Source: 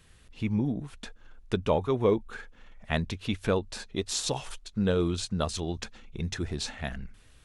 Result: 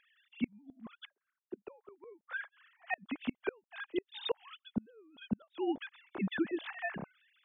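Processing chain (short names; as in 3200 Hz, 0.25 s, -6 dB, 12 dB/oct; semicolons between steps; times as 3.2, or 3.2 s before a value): sine-wave speech; flipped gate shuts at -23 dBFS, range -36 dB; 1.05–1.67 band-pass 230 Hz, Q 2.5; gain +2.5 dB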